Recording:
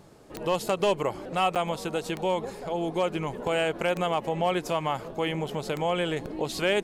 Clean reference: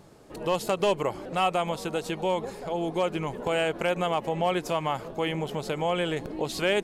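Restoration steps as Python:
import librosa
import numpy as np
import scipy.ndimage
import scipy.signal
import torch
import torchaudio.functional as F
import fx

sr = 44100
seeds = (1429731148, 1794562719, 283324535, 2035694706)

y = fx.fix_declick_ar(x, sr, threshold=10.0)
y = fx.fix_interpolate(y, sr, at_s=(1.55,), length_ms=7.8)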